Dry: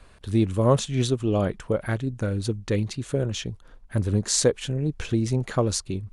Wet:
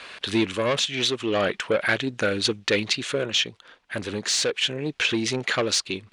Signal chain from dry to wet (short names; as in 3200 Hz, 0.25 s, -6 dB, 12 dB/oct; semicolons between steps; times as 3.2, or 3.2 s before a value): overdrive pedal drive 22 dB, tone 2300 Hz, clips at -5.5 dBFS; weighting filter D; vocal rider 0.5 s; gain -7 dB